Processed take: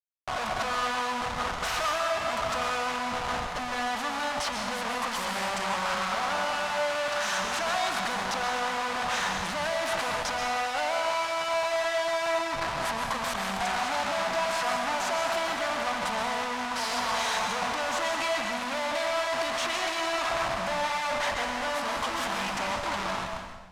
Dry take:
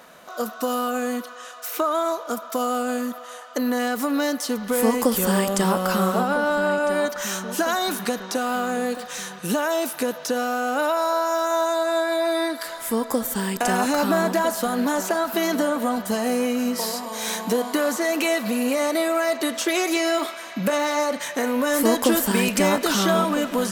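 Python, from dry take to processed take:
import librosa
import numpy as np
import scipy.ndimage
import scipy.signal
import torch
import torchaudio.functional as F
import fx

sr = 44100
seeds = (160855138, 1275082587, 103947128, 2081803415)

y = fx.fade_out_tail(x, sr, length_s=4.0)
y = fx.level_steps(y, sr, step_db=10, at=(11.53, 13.55))
y = fx.schmitt(y, sr, flips_db=-35.0)
y = fx.low_shelf_res(y, sr, hz=570.0, db=-11.0, q=1.5)
y = fx.notch_comb(y, sr, f0_hz=480.0, at=(1.87, 2.33))
y = fx.air_absorb(y, sr, metres=69.0)
y = fx.rev_plate(y, sr, seeds[0], rt60_s=1.2, hf_ratio=0.9, predelay_ms=110, drr_db=3.0)
y = F.gain(torch.from_numpy(y), -3.5).numpy()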